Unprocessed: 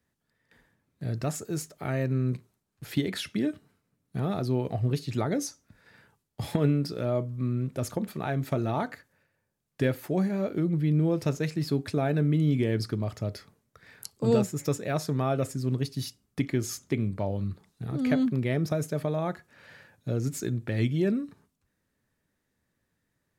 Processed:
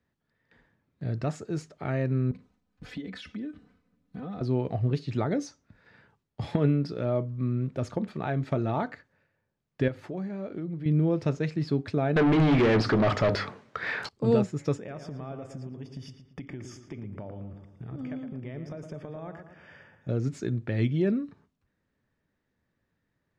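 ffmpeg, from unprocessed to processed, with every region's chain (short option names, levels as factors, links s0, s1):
-filter_complex "[0:a]asettb=1/sr,asplit=3[s0][s1][s2];[s0]atrim=end=2.314[s3];[s1]atrim=start=2.31:end=4.41,asetpts=PTS-STARTPTS,afade=t=in:d=0.004:c=qsin,afade=t=out:st=2.096:d=0.004:c=qsin,lowshelf=f=150:g=8,aecho=1:1:4:0.96,atrim=end_sample=92610,acompressor=threshold=0.0112:ratio=3:attack=3.2:release=140:knee=1:detection=peak[s4];[s2]atrim=start=4.406[s5];[s3][s4]acrossfade=d=0.004:c1=hsin:c2=qsin[s6];[s6][s5]acrossfade=d=0.004:c1=qsin:c2=hsin,asettb=1/sr,asplit=3[s7][s8][s9];[s7]atrim=end=9.884[s10];[s8]atrim=start=9.88:end=10.86,asetpts=PTS-STARTPTS,afade=t=in:d=0.004:c=qsin,afade=t=out:st=0.976:d=0.004:c=qsin,bandreject=f=50:t=h:w=6,bandreject=f=100:t=h:w=6,bandreject=f=150:t=h:w=6,acompressor=threshold=0.0141:ratio=2:attack=3.2:release=140:knee=1:detection=peak[s11];[s9]atrim=start=10.856[s12];[s10][s11]acrossfade=d=0.004:c1=hsin:c2=qsin[s13];[s13][s12]acrossfade=d=0.004:c1=qsin:c2=hsin,asettb=1/sr,asplit=3[s14][s15][s16];[s14]atrim=end=12.164[s17];[s15]atrim=start=12.16:end=14.09,asetpts=PTS-STARTPTS,afade=t=in:d=0.004:c=qsin,afade=t=out:st=1.926:d=0.004:c=qsin,bandreject=f=50:t=h:w=6,bandreject=f=100:t=h:w=6,bandreject=f=150:t=h:w=6,bandreject=f=200:t=h:w=6,bandreject=f=250:t=h:w=6,bandreject=f=300:t=h:w=6,asplit=2[s18][s19];[s19]highpass=f=720:p=1,volume=44.7,asoftclip=type=tanh:threshold=0.188[s20];[s18][s20]amix=inputs=2:normalize=0,lowpass=f=2700:p=1,volume=0.501[s21];[s16]atrim=start=14.086[s22];[s17][s21]acrossfade=d=0.004:c1=hsin:c2=qsin[s23];[s23][s22]acrossfade=d=0.004:c1=qsin:c2=hsin,asettb=1/sr,asplit=3[s24][s25][s26];[s24]atrim=end=14.774[s27];[s25]atrim=start=14.77:end=20.09,asetpts=PTS-STARTPTS,afade=t=in:d=0.004:c=qsin,afade=t=out:st=5.316:d=0.004:c=qsin,acompressor=threshold=0.0158:ratio=6:attack=3.2:release=140:knee=1:detection=peak,asuperstop=centerf=4100:order=12:qfactor=4.6,asplit=2[s28][s29];[s29]adelay=114,lowpass=f=2300:p=1,volume=0.447,asplit=2[s30][s31];[s31]adelay=114,lowpass=f=2300:p=1,volume=0.49,asplit=2[s32][s33];[s33]adelay=114,lowpass=f=2300:p=1,volume=0.49,asplit=2[s34][s35];[s35]adelay=114,lowpass=f=2300:p=1,volume=0.49,asplit=2[s36][s37];[s37]adelay=114,lowpass=f=2300:p=1,volume=0.49,asplit=2[s38][s39];[s39]adelay=114,lowpass=f=2300:p=1,volume=0.49[s40];[s28][s30][s32][s34][s36][s38][s40]amix=inputs=7:normalize=0,atrim=end_sample=234612[s41];[s26]atrim=start=20.086[s42];[s27][s41]acrossfade=d=0.004:c1=hsin:c2=qsin[s43];[s43][s42]acrossfade=d=0.004:c1=qsin:c2=hsin,lowpass=6600,aemphasis=mode=reproduction:type=50fm"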